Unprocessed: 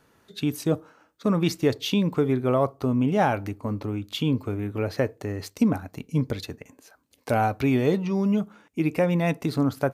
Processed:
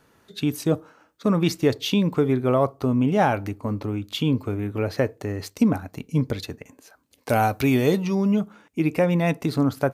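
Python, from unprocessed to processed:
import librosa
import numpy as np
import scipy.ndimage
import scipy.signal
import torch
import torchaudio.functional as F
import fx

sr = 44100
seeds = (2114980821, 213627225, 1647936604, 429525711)

y = fx.high_shelf(x, sr, hz=4800.0, db=11.5, at=(7.3, 8.15))
y = y * librosa.db_to_amplitude(2.0)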